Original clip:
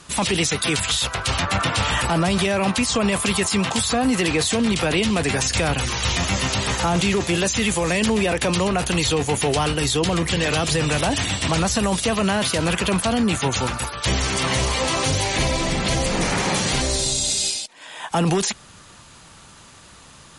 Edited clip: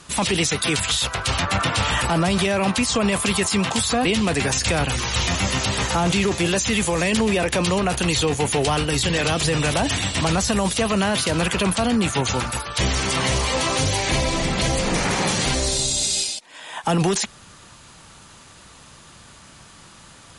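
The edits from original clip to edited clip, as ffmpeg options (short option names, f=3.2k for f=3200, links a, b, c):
-filter_complex "[0:a]asplit=3[a][b][c];[a]atrim=end=4.052[d];[b]atrim=start=4.938:end=9.922[e];[c]atrim=start=10.298[f];[d][e]acrossfade=d=0.004:c1=hsin:c2=hsin[g];[g][f]acrossfade=d=0.004:c1=hsin:c2=hsin"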